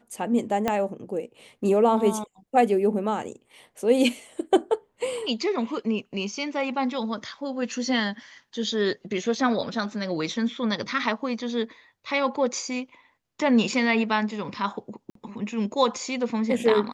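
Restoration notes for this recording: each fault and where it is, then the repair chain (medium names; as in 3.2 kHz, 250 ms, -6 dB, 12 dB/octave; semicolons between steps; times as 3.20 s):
0.68 s: pop -10 dBFS
15.10–15.15 s: dropout 53 ms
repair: de-click; interpolate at 15.10 s, 53 ms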